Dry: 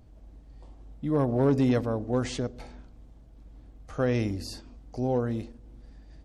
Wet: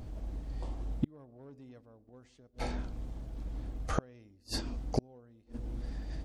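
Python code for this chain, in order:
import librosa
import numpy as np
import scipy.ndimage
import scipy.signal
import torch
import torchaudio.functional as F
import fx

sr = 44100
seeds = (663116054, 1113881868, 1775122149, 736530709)

y = fx.gate_flip(x, sr, shuts_db=-27.0, range_db=-39)
y = y * librosa.db_to_amplitude(10.0)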